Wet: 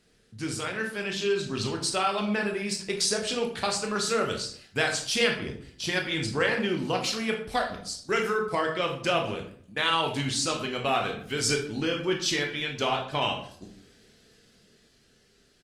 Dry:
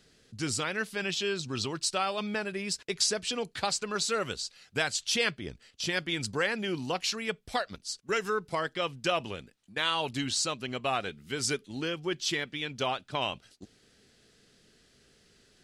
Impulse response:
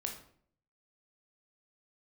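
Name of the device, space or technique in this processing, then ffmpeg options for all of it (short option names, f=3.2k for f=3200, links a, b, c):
speakerphone in a meeting room: -filter_complex "[0:a]asplit=3[a][b][c];[a]afade=t=out:st=6.09:d=0.02[d];[b]lowpass=9.5k,afade=t=in:st=6.09:d=0.02,afade=t=out:st=6.77:d=0.02[e];[c]afade=t=in:st=6.77:d=0.02[f];[d][e][f]amix=inputs=3:normalize=0[g];[1:a]atrim=start_sample=2205[h];[g][h]afir=irnorm=-1:irlink=0,asplit=2[i][j];[j]adelay=80,highpass=300,lowpass=3.4k,asoftclip=type=hard:threshold=-21dB,volume=-24dB[k];[i][k]amix=inputs=2:normalize=0,dynaudnorm=f=150:g=17:m=4.5dB" -ar 48000 -c:a libopus -b:a 32k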